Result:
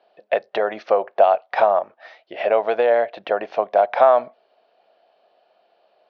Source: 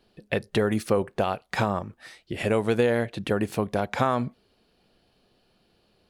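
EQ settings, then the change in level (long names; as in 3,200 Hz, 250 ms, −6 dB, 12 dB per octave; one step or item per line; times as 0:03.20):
high-pass with resonance 650 Hz, resonance Q 4.9
elliptic low-pass filter 6,100 Hz, stop band 40 dB
high-frequency loss of the air 250 metres
+4.0 dB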